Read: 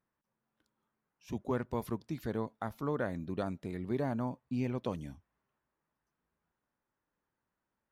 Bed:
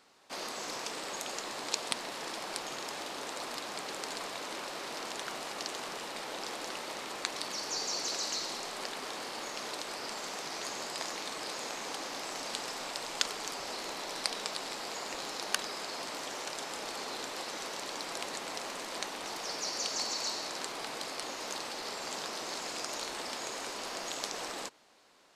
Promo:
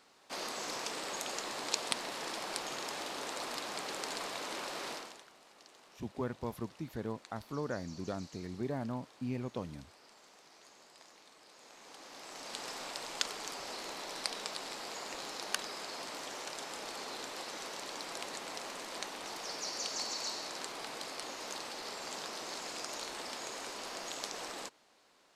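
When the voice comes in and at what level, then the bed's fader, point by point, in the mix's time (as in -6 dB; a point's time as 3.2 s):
4.70 s, -3.5 dB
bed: 4.91 s -0.5 dB
5.29 s -20.5 dB
11.48 s -20.5 dB
12.68 s -3.5 dB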